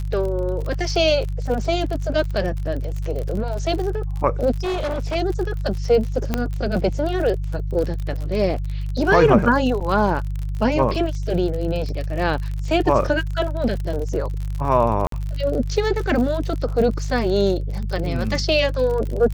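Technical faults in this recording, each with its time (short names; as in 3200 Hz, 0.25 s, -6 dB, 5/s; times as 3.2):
crackle 53/s -27 dBFS
hum 50 Hz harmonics 3 -25 dBFS
4.62–5.16 clipped -20.5 dBFS
6.34 pop -7 dBFS
9.8–9.81 gap 6.7 ms
15.07–15.12 gap 53 ms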